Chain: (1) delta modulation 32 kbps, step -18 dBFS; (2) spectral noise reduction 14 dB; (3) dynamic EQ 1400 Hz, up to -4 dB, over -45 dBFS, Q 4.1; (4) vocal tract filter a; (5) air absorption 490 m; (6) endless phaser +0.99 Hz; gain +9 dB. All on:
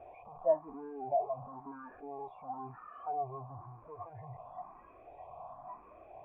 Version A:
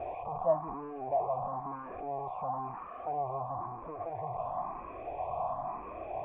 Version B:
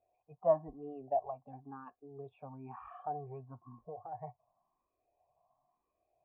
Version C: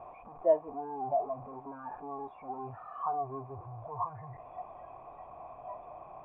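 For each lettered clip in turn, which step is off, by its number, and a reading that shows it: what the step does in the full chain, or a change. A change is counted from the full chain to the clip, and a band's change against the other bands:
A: 2, 500 Hz band -3.0 dB; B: 1, 2 kHz band -4.0 dB; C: 6, loudness change +3.0 LU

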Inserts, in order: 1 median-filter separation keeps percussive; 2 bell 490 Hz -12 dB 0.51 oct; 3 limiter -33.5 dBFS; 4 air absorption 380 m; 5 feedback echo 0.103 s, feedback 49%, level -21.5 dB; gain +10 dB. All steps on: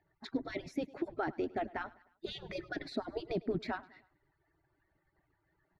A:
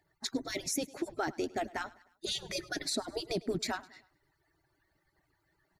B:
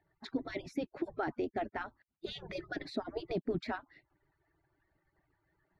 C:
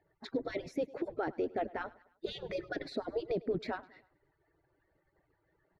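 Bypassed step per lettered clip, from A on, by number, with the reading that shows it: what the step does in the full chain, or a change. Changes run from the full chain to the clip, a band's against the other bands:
4, 4 kHz band +10.5 dB; 5, echo-to-direct -20.5 dB to none; 2, 500 Hz band +4.0 dB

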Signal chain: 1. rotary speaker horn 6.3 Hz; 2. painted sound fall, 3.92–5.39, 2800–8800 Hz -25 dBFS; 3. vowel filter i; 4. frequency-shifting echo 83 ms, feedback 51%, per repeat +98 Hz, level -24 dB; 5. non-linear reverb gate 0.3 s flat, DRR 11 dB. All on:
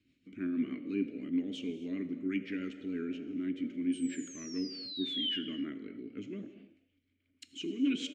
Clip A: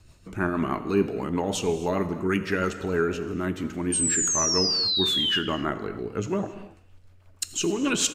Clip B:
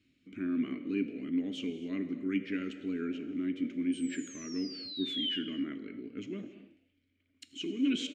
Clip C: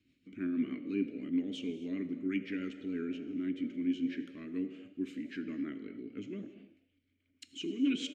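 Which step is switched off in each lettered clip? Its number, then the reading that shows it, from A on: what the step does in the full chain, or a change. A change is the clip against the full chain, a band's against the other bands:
3, 250 Hz band -12.0 dB; 1, momentary loudness spread change -1 LU; 2, 4 kHz band -9.0 dB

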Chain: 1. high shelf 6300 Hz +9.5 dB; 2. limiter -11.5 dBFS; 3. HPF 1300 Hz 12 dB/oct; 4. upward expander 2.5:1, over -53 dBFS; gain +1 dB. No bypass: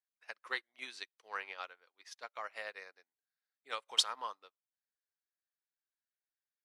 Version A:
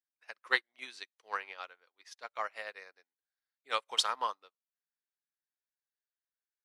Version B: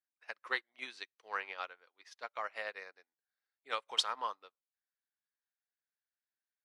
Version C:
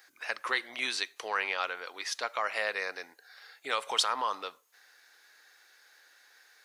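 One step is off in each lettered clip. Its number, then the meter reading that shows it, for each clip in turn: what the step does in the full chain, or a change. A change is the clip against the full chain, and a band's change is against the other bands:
2, crest factor change -2.0 dB; 1, 8 kHz band -8.5 dB; 4, 4 kHz band -7.0 dB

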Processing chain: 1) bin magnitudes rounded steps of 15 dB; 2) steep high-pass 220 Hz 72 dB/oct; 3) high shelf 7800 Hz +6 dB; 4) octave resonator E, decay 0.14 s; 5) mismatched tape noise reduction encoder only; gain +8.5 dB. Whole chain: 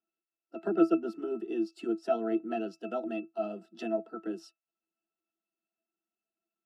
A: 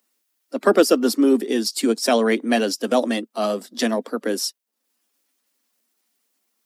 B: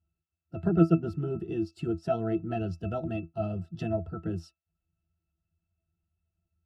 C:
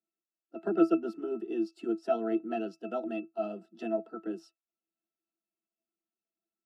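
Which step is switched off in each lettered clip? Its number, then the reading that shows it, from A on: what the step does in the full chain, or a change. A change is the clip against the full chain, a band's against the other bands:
4, 4 kHz band +15.0 dB; 2, 250 Hz band +2.0 dB; 5, 4 kHz band -2.5 dB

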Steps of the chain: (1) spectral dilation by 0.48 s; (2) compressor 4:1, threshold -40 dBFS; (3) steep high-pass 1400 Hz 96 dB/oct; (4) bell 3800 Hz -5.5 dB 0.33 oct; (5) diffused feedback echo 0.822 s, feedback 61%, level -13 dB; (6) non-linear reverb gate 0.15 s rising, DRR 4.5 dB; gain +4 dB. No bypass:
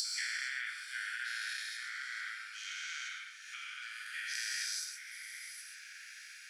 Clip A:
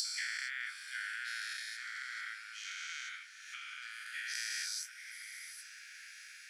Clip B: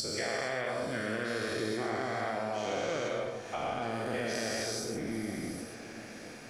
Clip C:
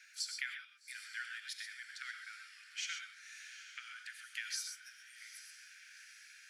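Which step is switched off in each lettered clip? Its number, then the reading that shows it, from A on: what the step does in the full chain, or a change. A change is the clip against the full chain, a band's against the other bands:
6, echo-to-direct -3.5 dB to -11.0 dB; 3, crest factor change -6.5 dB; 1, momentary loudness spread change +3 LU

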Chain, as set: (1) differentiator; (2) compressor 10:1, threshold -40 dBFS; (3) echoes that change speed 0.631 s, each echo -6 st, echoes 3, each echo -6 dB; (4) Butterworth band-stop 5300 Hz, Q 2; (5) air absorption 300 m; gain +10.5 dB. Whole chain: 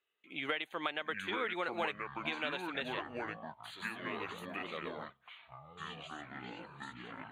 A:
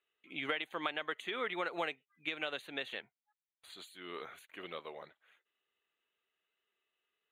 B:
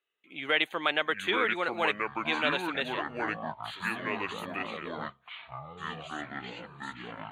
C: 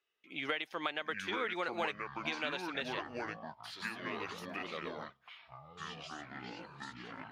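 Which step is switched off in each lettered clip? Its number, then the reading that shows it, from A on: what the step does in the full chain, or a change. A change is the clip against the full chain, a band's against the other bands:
3, crest factor change +2.0 dB; 2, mean gain reduction 5.0 dB; 4, 8 kHz band +5.0 dB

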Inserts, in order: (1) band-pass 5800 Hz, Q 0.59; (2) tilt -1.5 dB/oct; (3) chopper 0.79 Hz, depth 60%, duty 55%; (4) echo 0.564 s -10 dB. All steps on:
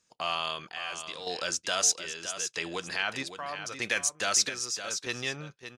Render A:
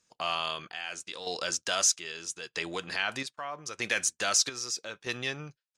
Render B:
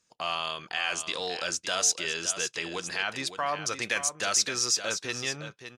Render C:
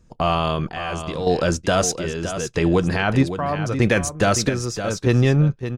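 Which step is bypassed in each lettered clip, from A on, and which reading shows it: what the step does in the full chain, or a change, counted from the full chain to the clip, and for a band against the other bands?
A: 4, momentary loudness spread change +1 LU; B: 3, momentary loudness spread change -4 LU; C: 1, 125 Hz band +20.0 dB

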